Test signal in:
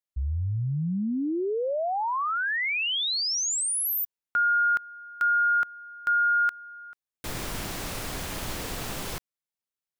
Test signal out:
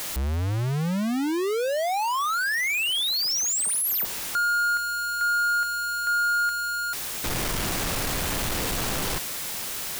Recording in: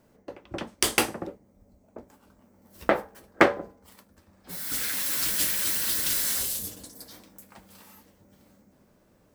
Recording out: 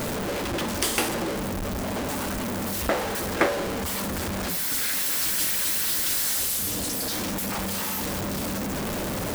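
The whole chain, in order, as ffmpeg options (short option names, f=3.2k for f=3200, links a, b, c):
-af "aeval=exprs='val(0)+0.5*0.141*sgn(val(0))':c=same,volume=-6dB"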